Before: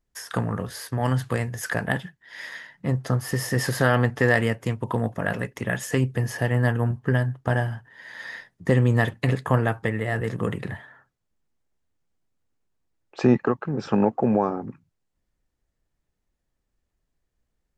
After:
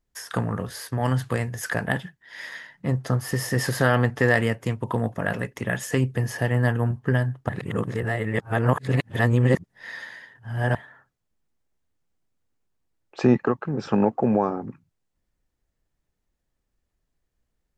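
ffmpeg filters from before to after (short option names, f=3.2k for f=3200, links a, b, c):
-filter_complex "[0:a]asplit=3[a][b][c];[a]atrim=end=7.492[d];[b]atrim=start=7.488:end=10.752,asetpts=PTS-STARTPTS,areverse[e];[c]atrim=start=10.748[f];[d][e]acrossfade=d=0.004:c1=hsin:c2=hsin[g];[g][f]acrossfade=d=0.004:c1=hsin:c2=hsin"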